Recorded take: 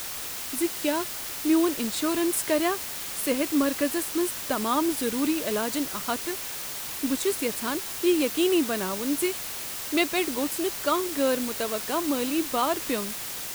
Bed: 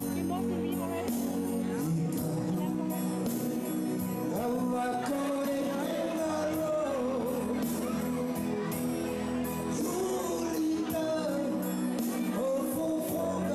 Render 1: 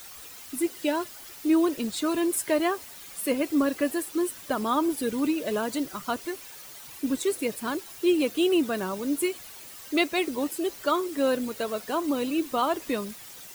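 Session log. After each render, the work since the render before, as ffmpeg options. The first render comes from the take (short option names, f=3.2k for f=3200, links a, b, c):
-af "afftdn=nr=12:nf=-35"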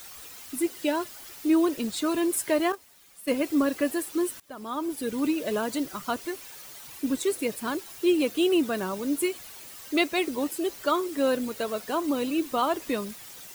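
-filter_complex "[0:a]asettb=1/sr,asplit=3[a][b][c];[a]atrim=end=2.724[d];[b]atrim=start=2.72:end=3.3,asetpts=PTS-STARTPTS,afade=t=in:d=0.004:c=qsin,afade=t=out:st=0.576:d=0.004:c=qsin,agate=range=-12dB:threshold=-30dB:ratio=16:release=100:detection=peak[e];[c]atrim=start=3.296[f];[d][e]acrossfade=d=0.004:c1=hsin:c2=qsin[g];[g][f]acrossfade=d=0.004:c1=qsin:c2=hsin,asplit=2[h][i];[h]atrim=end=4.4,asetpts=PTS-STARTPTS,afade=t=out:st=4.396:d=0.004:c=hsin:silence=0.0749894[j];[i]atrim=start=4.4,asetpts=PTS-STARTPTS,afade=t=in:d=0.89:silence=0.0749894[k];[j][k]concat=n=2:v=0:a=1"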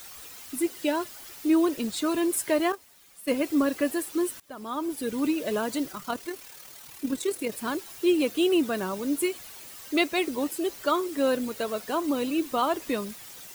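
-filter_complex "[0:a]asettb=1/sr,asplit=3[a][b][c];[a]atrim=end=5.924[d];[b]atrim=start=5.92:end=7.52,asetpts=PTS-STARTPTS,afade=t=in:d=0.004:c=qsin,afade=t=out:st=1.596:d=0.004:c=qsin,tremolo=f=38:d=0.462[e];[c]atrim=start=7.516[f];[d][e]acrossfade=d=0.004:c1=hsin:c2=qsin[g];[g][f]acrossfade=d=0.004:c1=qsin:c2=hsin"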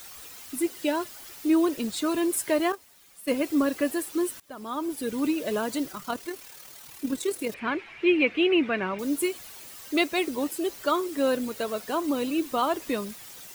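-filter_complex "[0:a]asettb=1/sr,asplit=3[a][b][c];[a]atrim=end=7.544[d];[b]atrim=start=7.54:end=8.99,asetpts=PTS-STARTPTS,afade=t=in:d=0.004:c=qsin,afade=t=out:st=1.446:d=0.004:c=qsin,lowpass=f=2.3k:t=q:w=5[e];[c]atrim=start=8.986[f];[d][e]acrossfade=d=0.004:c1=hsin:c2=qsin[g];[g][f]acrossfade=d=0.004:c1=qsin:c2=hsin"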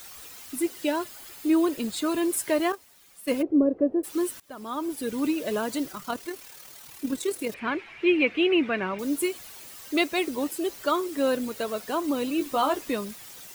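-filter_complex "[0:a]asettb=1/sr,asplit=3[a][b][c];[a]atrim=end=0.994[d];[b]atrim=start=0.99:end=2.25,asetpts=PTS-STARTPTS,afade=t=in:d=0.004:c=qsin,afade=t=out:st=1.256:d=0.004:c=qsin,bandreject=f=5.7k:w=12[e];[c]atrim=start=2.246[f];[d][e]acrossfade=d=0.004:c1=hsin:c2=qsin[g];[g][f]acrossfade=d=0.004:c1=qsin:c2=hsin,asplit=3[h][i][j];[h]afade=t=out:st=3.41:d=0.02[k];[i]lowpass=f=480:t=q:w=2,afade=t=in:st=3.41:d=0.02,afade=t=out:st=4.03:d=0.02[l];[j]afade=t=in:st=4.03:d=0.02[m];[k][l][m]amix=inputs=3:normalize=0,asettb=1/sr,asplit=3[n][o][p];[n]atrim=end=12.394[q];[o]atrim=start=12.39:end=12.82,asetpts=PTS-STARTPTS,afade=t=in:d=0.004:c=qsin,afade=t=out:st=0.426:d=0.004:c=qsin,asplit=2[r][s];[s]adelay=14,volume=-5dB[t];[r][t]amix=inputs=2:normalize=0,atrim=end_sample=18963[u];[p]atrim=start=12.816[v];[q][u]acrossfade=d=0.004:c1=hsin:c2=qsin[w];[w][v]acrossfade=d=0.004:c1=qsin:c2=hsin"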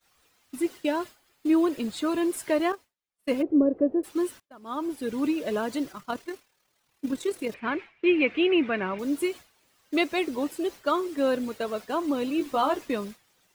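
-af "agate=range=-33dB:threshold=-33dB:ratio=3:detection=peak,lowpass=f=3.7k:p=1"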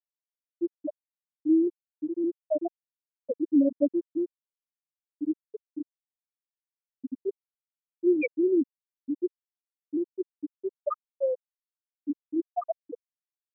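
-af "afftfilt=real='re*gte(hypot(re,im),0.631)':imag='im*gte(hypot(re,im),0.631)':win_size=1024:overlap=0.75,adynamicequalizer=threshold=0.002:dfrequency=1000:dqfactor=3.6:tfrequency=1000:tqfactor=3.6:attack=5:release=100:ratio=0.375:range=2.5:mode=boostabove:tftype=bell"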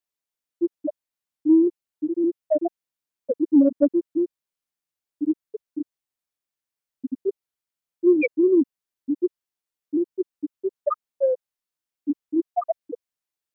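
-af "acontrast=52"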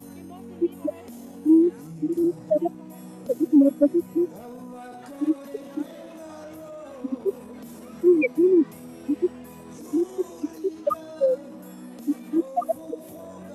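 -filter_complex "[1:a]volume=-9.5dB[a];[0:a][a]amix=inputs=2:normalize=0"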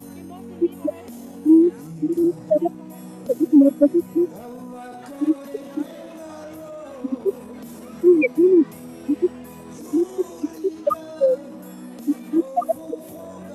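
-af "volume=3.5dB"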